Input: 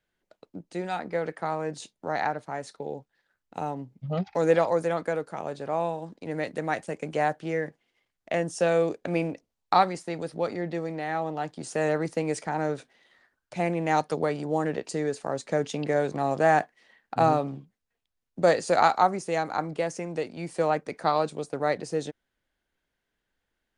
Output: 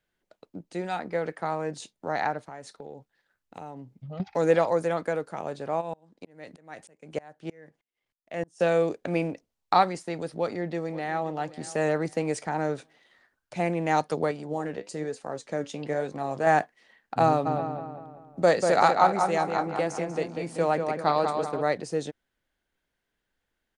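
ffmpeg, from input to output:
ffmpeg -i in.wav -filter_complex "[0:a]asettb=1/sr,asplit=3[link_01][link_02][link_03];[link_01]atrim=end=2.434[link_04];[link_02]atrim=start=2.43:end=4.2,asetpts=PTS-STARTPTS,afade=type=in:duration=0.004:curve=qsin,afade=type=out:start_time=1.766:duration=0.004:curve=qsin,acompressor=threshold=-40dB:ratio=2.5:attack=3.2:release=140:knee=1:detection=peak[link_05];[link_03]atrim=start=4.196[link_06];[link_04][link_05]acrossfade=duration=0.004:curve1=hsin:curve2=qsin[link_07];[link_07][link_06]acrossfade=duration=0.004:curve1=qsin:curve2=hsin,asplit=3[link_08][link_09][link_10];[link_08]afade=type=out:start_time=5.8:duration=0.02[link_11];[link_09]aeval=exprs='val(0)*pow(10,-31*if(lt(mod(-3.2*n/s,1),2*abs(-3.2)/1000),1-mod(-3.2*n/s,1)/(2*abs(-3.2)/1000),(mod(-3.2*n/s,1)-2*abs(-3.2)/1000)/(1-2*abs(-3.2)/1000))/20)':channel_layout=same,afade=type=in:start_time=5.8:duration=0.02,afade=type=out:start_time=8.59:duration=0.02[link_12];[link_10]afade=type=in:start_time=8.59:duration=0.02[link_13];[link_11][link_12][link_13]amix=inputs=3:normalize=0,asplit=2[link_14][link_15];[link_15]afade=type=in:start_time=10.38:duration=0.01,afade=type=out:start_time=11.39:duration=0.01,aecho=0:1:530|1060|1590:0.141254|0.0494388|0.0173036[link_16];[link_14][link_16]amix=inputs=2:normalize=0,asettb=1/sr,asplit=3[link_17][link_18][link_19];[link_17]atrim=end=14.314[link_20];[link_18]atrim=start=14.31:end=16.47,asetpts=PTS-STARTPTS,afade=type=in:duration=0.004:curve=qsin,afade=type=out:start_time=2.156:duration=0.004:curve=qsin,flanger=delay=3.7:depth=6.9:regen=73:speed=1.1:shape=sinusoidal[link_21];[link_19]atrim=start=16.466[link_22];[link_20][link_21]acrossfade=duration=0.004:curve1=hsin:curve2=qsin[link_23];[link_23][link_22]acrossfade=duration=0.004:curve1=qsin:curve2=hsin,asplit=3[link_24][link_25][link_26];[link_24]afade=type=out:start_time=17.45:duration=0.02[link_27];[link_25]asplit=2[link_28][link_29];[link_29]adelay=192,lowpass=frequency=3200:poles=1,volume=-5dB,asplit=2[link_30][link_31];[link_31]adelay=192,lowpass=frequency=3200:poles=1,volume=0.49,asplit=2[link_32][link_33];[link_33]adelay=192,lowpass=frequency=3200:poles=1,volume=0.49,asplit=2[link_34][link_35];[link_35]adelay=192,lowpass=frequency=3200:poles=1,volume=0.49,asplit=2[link_36][link_37];[link_37]adelay=192,lowpass=frequency=3200:poles=1,volume=0.49,asplit=2[link_38][link_39];[link_39]adelay=192,lowpass=frequency=3200:poles=1,volume=0.49[link_40];[link_28][link_30][link_32][link_34][link_36][link_38][link_40]amix=inputs=7:normalize=0,afade=type=in:start_time=17.45:duration=0.02,afade=type=out:start_time=21.61:duration=0.02[link_41];[link_26]afade=type=in:start_time=21.61:duration=0.02[link_42];[link_27][link_41][link_42]amix=inputs=3:normalize=0" out.wav

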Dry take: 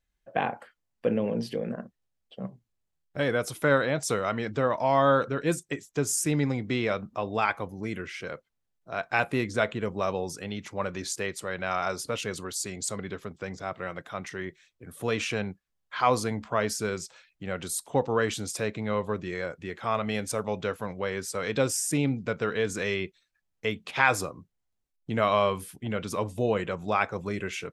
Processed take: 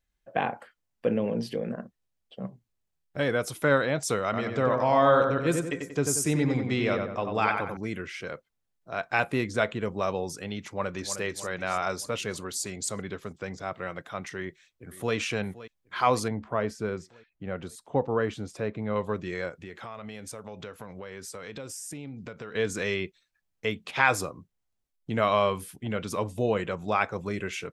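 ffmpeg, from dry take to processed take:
ffmpeg -i in.wav -filter_complex "[0:a]asettb=1/sr,asplit=3[link_01][link_02][link_03];[link_01]atrim=end=4.244[link_04];[link_02]atrim=start=4.24:end=7.77,asetpts=PTS-STARTPTS,afade=type=in:duration=0.004:curve=qsin,afade=type=out:start_time=3.526:duration=0.004:curve=qsin,asplit=2[link_05][link_06];[link_06]adelay=92,lowpass=frequency=2300:poles=1,volume=-4dB,asplit=2[link_07][link_08];[link_08]adelay=92,lowpass=frequency=2300:poles=1,volume=0.47,asplit=2[link_09][link_10];[link_10]adelay=92,lowpass=frequency=2300:poles=1,volume=0.47,asplit=2[link_11][link_12];[link_12]adelay=92,lowpass=frequency=2300:poles=1,volume=0.47,asplit=2[link_13][link_14];[link_14]adelay=92,lowpass=frequency=2300:poles=1,volume=0.47,asplit=2[link_15][link_16];[link_16]adelay=92,lowpass=frequency=2300:poles=1,volume=0.47[link_17];[link_05][link_07][link_09][link_11][link_13][link_15][link_17]amix=inputs=7:normalize=0,atrim=end_sample=155673[link_18];[link_03]atrim=start=7.766[link_19];[link_04][link_18]acrossfade=duration=0.004:curve1=hsin:curve2=qsin[link_20];[link_20][link_19]acrossfade=duration=0.004:curve1=qsin:curve2=hsin,asplit=2[link_21][link_22];[link_22]afade=type=in:start_time=10.67:duration=0.01,afade=type=out:start_time=11.17:duration=0.01,aecho=0:1:310|620|930|1240|1550|1860|2170:0.316228|0.189737|0.113842|0.0683052|0.0409831|0.0245899|0.0147539[link_23];[link_21][link_23]amix=inputs=2:normalize=0,asplit=2[link_24][link_25];[link_25]afade=type=in:start_time=14.39:duration=0.01,afade=type=out:start_time=15.15:duration=0.01,aecho=0:1:520|1040|1560|2080|2600|3120|3640:0.149624|0.0972553|0.063216|0.0410904|0.0267087|0.0173607|0.0112844[link_26];[link_24][link_26]amix=inputs=2:normalize=0,asettb=1/sr,asplit=3[link_27][link_28][link_29];[link_27]atrim=end=16.284[link_30];[link_28]atrim=start=16.28:end=18.96,asetpts=PTS-STARTPTS,afade=type=in:duration=0.004:curve=qsin,afade=type=out:start_time=2.676:duration=0.004:curve=qsin,lowpass=frequency=1200:poles=1[link_31];[link_29]atrim=start=18.956[link_32];[link_30][link_31]acrossfade=duration=0.004:curve1=hsin:curve2=qsin[link_33];[link_33][link_32]acrossfade=duration=0.004:curve1=qsin:curve2=hsin,asettb=1/sr,asplit=3[link_34][link_35][link_36];[link_34]atrim=end=19.494[link_37];[link_35]atrim=start=19.49:end=22.55,asetpts=PTS-STARTPTS,afade=type=in:duration=0.004:curve=qsin,afade=type=out:start_time=3.056:duration=0.004:curve=qsin,acompressor=threshold=-37dB:ratio=5:attack=3.2:release=140:knee=1:detection=peak[link_38];[link_36]atrim=start=22.546[link_39];[link_37][link_38]acrossfade=duration=0.004:curve1=hsin:curve2=qsin[link_40];[link_40][link_39]acrossfade=duration=0.004:curve1=qsin:curve2=hsin" out.wav

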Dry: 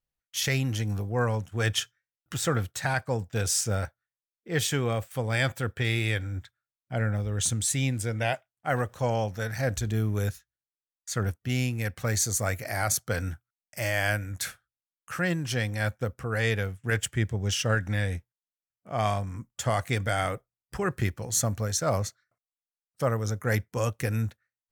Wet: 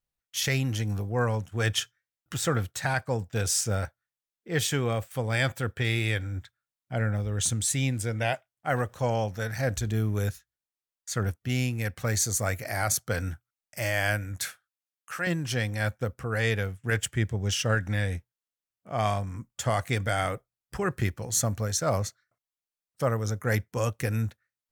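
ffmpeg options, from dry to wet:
ffmpeg -i in.wav -filter_complex "[0:a]asettb=1/sr,asplit=3[link_01][link_02][link_03];[link_01]atrim=end=14.454[link_04];[link_02]atrim=start=14.45:end=15.27,asetpts=PTS-STARTPTS,afade=type=in:duration=0.004:curve=qsin,afade=type=out:start_time=0.816:duration=0.004:curve=qsin,highpass=frequency=580:poles=1[link_05];[link_03]atrim=start=15.266[link_06];[link_04][link_05]acrossfade=duration=0.004:curve1=hsin:curve2=qsin[link_07];[link_07][link_06]acrossfade=duration=0.004:curve1=qsin:curve2=hsin" out.wav

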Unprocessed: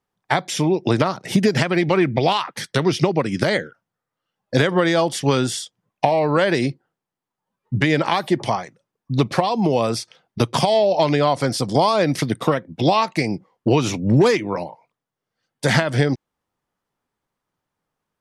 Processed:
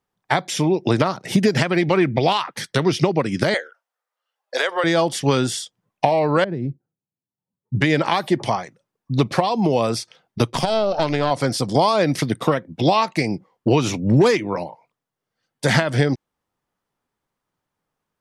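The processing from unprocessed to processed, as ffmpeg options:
ffmpeg -i in.wav -filter_complex "[0:a]asettb=1/sr,asplit=3[link_01][link_02][link_03];[link_01]atrim=end=3.544[link_04];[link_02]atrim=start=3.54:end=4.84,asetpts=PTS-STARTPTS,afade=type=in:duration=0.004:curve=qsin,afade=type=out:start_time=1.296:duration=0.004:curve=qsin,highpass=frequency=520:width=0.5412,highpass=frequency=520:width=1.3066[link_05];[link_03]atrim=start=4.836[link_06];[link_04][link_05]acrossfade=duration=0.004:curve1=hsin:curve2=qsin[link_07];[link_07][link_06]acrossfade=duration=0.004:curve1=qsin:curve2=hsin,asettb=1/sr,asplit=3[link_08][link_09][link_10];[link_08]atrim=end=6.444[link_11];[link_09]atrim=start=6.44:end=7.75,asetpts=PTS-STARTPTS,afade=type=in:duration=0.004:curve=qsin,afade=type=out:start_time=1.306:duration=0.004:curve=qsin,bandpass=frequency=120:width_type=q:width=0.94[link_12];[link_10]atrim=start=7.746[link_13];[link_11][link_12]acrossfade=duration=0.004:curve1=hsin:curve2=qsin[link_14];[link_14][link_13]acrossfade=duration=0.004:curve1=qsin:curve2=hsin,asettb=1/sr,asplit=3[link_15][link_16][link_17];[link_15]atrim=end=10.504[link_18];[link_16]atrim=start=10.5:end=11.31,asetpts=PTS-STARTPTS,afade=type=in:duration=0.004:curve=qsin,afade=type=out:start_time=0.806:duration=0.004:curve=qsin,aeval=exprs='(tanh(2.51*val(0)+0.7)-tanh(0.7))/2.51':channel_layout=same[link_19];[link_17]atrim=start=11.306[link_20];[link_18][link_19]acrossfade=duration=0.004:curve1=hsin:curve2=qsin[link_21];[link_21][link_20]acrossfade=duration=0.004:curve1=qsin:curve2=hsin" out.wav

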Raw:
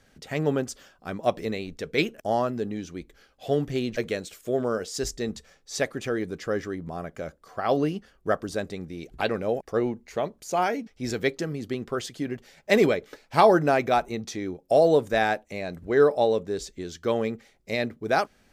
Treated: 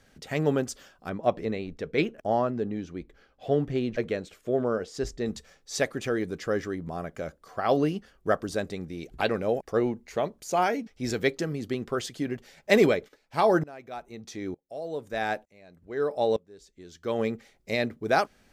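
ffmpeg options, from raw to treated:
ffmpeg -i in.wav -filter_complex "[0:a]asettb=1/sr,asplit=3[link_01][link_02][link_03];[link_01]atrim=end=1.094[link_04];[link_02]atrim=start=1.09:end=5.26,asetpts=PTS-STARTPTS,afade=type=in:duration=0.004:curve=qsin,afade=type=out:start_time=4.166:duration=0.004:curve=qsin,lowpass=frequency=1900:poles=1[link_05];[link_03]atrim=start=5.256[link_06];[link_04][link_05]acrossfade=duration=0.004:curve1=hsin:curve2=qsin[link_07];[link_07][link_06]acrossfade=duration=0.004:curve1=qsin:curve2=hsin,asplit=3[link_08][link_09][link_10];[link_08]afade=type=out:start_time=13.07:duration=0.02[link_11];[link_09]aeval=exprs='val(0)*pow(10,-25*if(lt(mod(-1.1*n/s,1),2*abs(-1.1)/1000),1-mod(-1.1*n/s,1)/(2*abs(-1.1)/1000),(mod(-1.1*n/s,1)-2*abs(-1.1)/1000)/(1-2*abs(-1.1)/1000))/20)':channel_layout=same,afade=type=in:start_time=13.07:duration=0.02,afade=type=out:start_time=17.18:duration=0.02[link_12];[link_10]afade=type=in:start_time=17.18:duration=0.02[link_13];[link_11][link_12][link_13]amix=inputs=3:normalize=0" out.wav

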